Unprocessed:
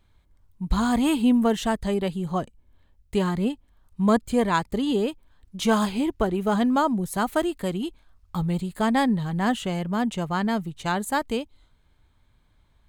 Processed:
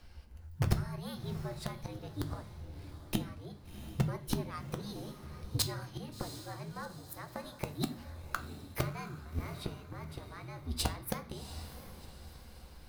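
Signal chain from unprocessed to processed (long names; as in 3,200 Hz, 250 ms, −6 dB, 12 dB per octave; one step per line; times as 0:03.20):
frequency shifter −86 Hz
gate with flip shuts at −21 dBFS, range −30 dB
mains-hum notches 50/100/150 Hz
formants moved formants +5 semitones
in parallel at −3 dB: wrap-around overflow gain 28.5 dB
on the sum: feedback delay with all-pass diffusion 710 ms, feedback 46%, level −12 dB
on a send at −7 dB: convolution reverb RT60 0.40 s, pre-delay 6 ms
on the sum: level +3 dB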